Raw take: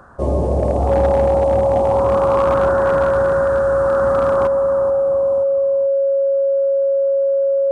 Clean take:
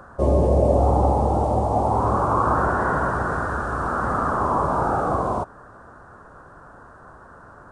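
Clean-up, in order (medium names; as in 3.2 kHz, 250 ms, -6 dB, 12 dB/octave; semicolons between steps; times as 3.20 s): clip repair -9 dBFS; band-stop 550 Hz, Q 30; inverse comb 432 ms -9.5 dB; trim 0 dB, from 4.47 s +12 dB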